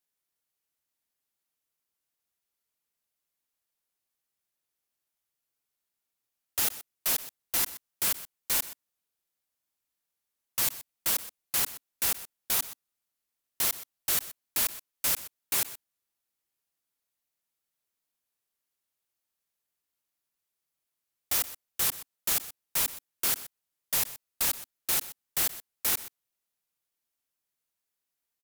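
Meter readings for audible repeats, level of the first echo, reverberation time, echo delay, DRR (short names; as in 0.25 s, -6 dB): 1, -16.0 dB, none, 0.125 s, none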